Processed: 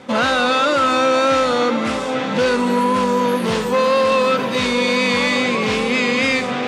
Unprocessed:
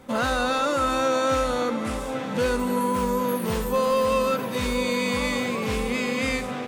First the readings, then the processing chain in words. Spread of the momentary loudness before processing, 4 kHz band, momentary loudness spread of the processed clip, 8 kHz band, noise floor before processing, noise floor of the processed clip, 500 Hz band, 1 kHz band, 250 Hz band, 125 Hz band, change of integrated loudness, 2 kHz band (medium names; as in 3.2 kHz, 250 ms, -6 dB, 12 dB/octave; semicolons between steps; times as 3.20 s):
4 LU, +10.0 dB, 3 LU, +3.5 dB, -31 dBFS, -22 dBFS, +7.0 dB, +7.5 dB, +6.5 dB, +3.0 dB, +7.5 dB, +9.5 dB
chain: treble shelf 2.7 kHz +8.5 dB; reverse; upward compressor, threshold -27 dBFS; reverse; hard clipper -20 dBFS, distortion -13 dB; wow and flutter 26 cents; band-pass 140–4400 Hz; trim +8 dB